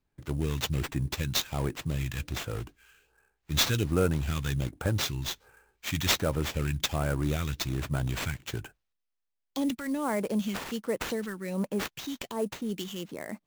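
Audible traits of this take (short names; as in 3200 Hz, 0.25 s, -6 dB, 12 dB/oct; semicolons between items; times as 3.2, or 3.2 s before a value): phasing stages 2, 1.3 Hz, lowest notch 580–4000 Hz; aliases and images of a low sample rate 10000 Hz, jitter 20%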